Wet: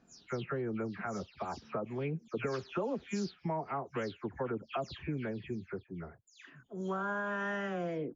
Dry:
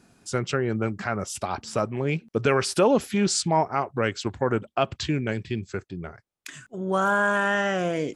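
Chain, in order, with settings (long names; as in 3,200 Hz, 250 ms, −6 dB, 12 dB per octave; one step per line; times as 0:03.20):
every frequency bin delayed by itself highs early, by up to 206 ms
high-shelf EQ 2,600 Hz −10 dB
downward compressor 6 to 1, threshold −24 dBFS, peak gain reduction 8.5 dB
level −7 dB
MP3 64 kbit/s 16,000 Hz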